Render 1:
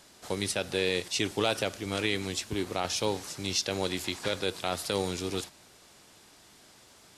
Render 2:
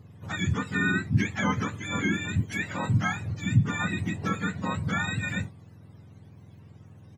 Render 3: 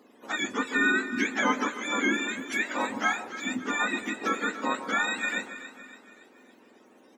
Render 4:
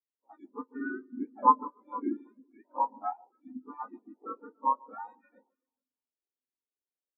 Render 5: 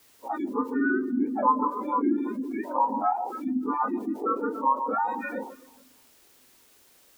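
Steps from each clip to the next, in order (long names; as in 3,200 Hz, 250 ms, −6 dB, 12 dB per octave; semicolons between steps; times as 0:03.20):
frequency axis turned over on the octave scale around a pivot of 830 Hz; dynamic equaliser 2,100 Hz, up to +6 dB, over −47 dBFS, Q 1.3; double-tracking delay 27 ms −14 dB
elliptic high-pass filter 240 Hz, stop band 40 dB; delay that swaps between a low-pass and a high-pass 141 ms, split 1,100 Hz, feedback 69%, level −10 dB; level +4 dB
gate on every frequency bin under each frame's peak −20 dB strong; drawn EQ curve 210 Hz 0 dB, 1,000 Hz +9 dB, 1,700 Hz −11 dB; every bin expanded away from the loudest bin 2.5 to 1
envelope flattener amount 70%; level −2.5 dB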